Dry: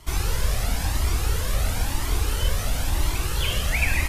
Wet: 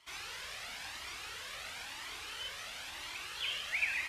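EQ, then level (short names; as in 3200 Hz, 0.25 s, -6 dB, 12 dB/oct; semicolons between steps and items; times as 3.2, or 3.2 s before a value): band-pass 2600 Hz, Q 0.98; -7.0 dB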